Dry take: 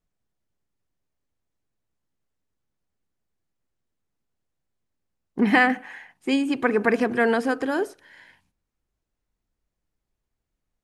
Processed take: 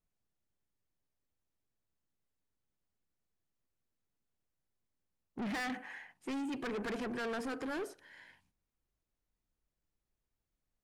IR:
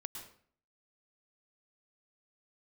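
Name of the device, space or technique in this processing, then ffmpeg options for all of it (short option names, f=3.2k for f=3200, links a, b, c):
saturation between pre-emphasis and de-emphasis: -af "highshelf=f=7.7k:g=8,asoftclip=type=tanh:threshold=-29dB,highshelf=f=7.7k:g=-8,volume=-6.5dB"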